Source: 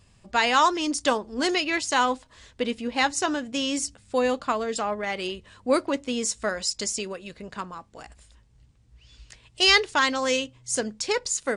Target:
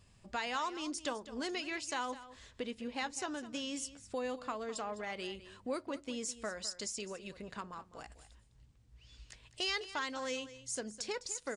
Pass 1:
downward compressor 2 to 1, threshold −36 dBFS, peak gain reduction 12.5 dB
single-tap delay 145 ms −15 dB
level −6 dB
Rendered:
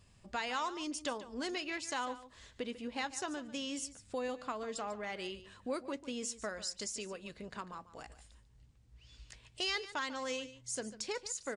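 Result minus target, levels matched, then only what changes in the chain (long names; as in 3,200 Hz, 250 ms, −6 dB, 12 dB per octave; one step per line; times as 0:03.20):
echo 61 ms early
change: single-tap delay 206 ms −15 dB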